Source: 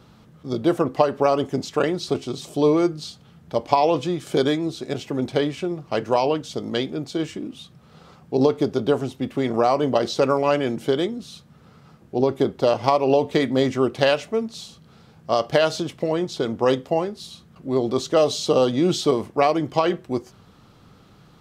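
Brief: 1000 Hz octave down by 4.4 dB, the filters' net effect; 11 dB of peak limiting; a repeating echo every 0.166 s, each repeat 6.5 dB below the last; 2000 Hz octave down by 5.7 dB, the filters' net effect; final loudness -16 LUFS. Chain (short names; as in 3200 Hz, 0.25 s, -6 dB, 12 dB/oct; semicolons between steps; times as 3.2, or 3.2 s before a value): bell 1000 Hz -5 dB; bell 2000 Hz -6 dB; limiter -15 dBFS; feedback echo 0.166 s, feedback 47%, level -6.5 dB; gain +10 dB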